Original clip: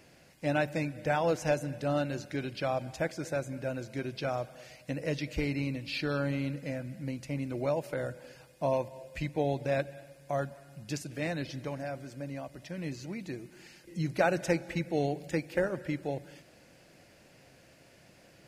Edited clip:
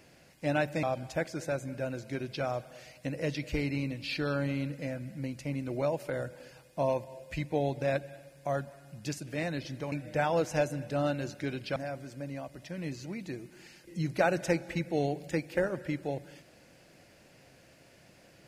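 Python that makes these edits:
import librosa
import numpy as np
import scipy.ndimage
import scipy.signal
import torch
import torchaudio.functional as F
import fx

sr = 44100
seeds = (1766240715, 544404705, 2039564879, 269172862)

y = fx.edit(x, sr, fx.move(start_s=0.83, length_s=1.84, to_s=11.76), tone=tone)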